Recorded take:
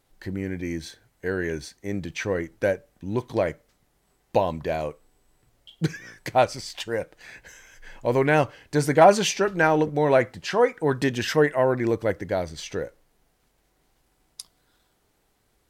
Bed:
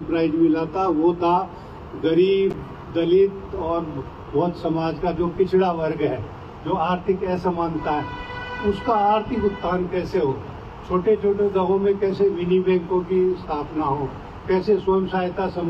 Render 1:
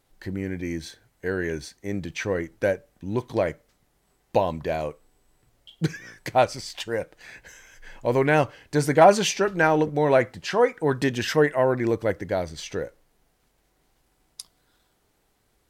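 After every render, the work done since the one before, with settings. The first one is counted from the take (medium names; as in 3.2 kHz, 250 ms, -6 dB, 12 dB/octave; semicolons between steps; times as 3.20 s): no audible change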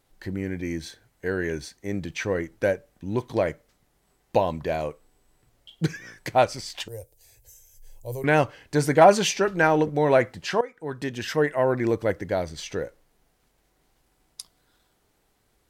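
6.88–8.24 s: FFT filter 120 Hz 0 dB, 160 Hz -29 dB, 450 Hz -11 dB, 820 Hz -16 dB, 1.5 kHz -30 dB, 13 kHz +12 dB; 10.61–11.80 s: fade in, from -18 dB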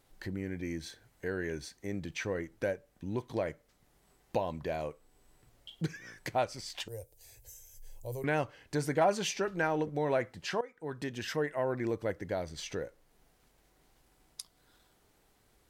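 compression 1.5:1, threshold -47 dBFS, peak gain reduction 13 dB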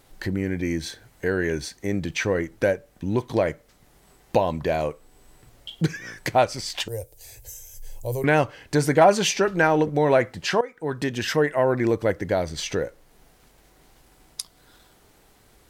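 trim +11.5 dB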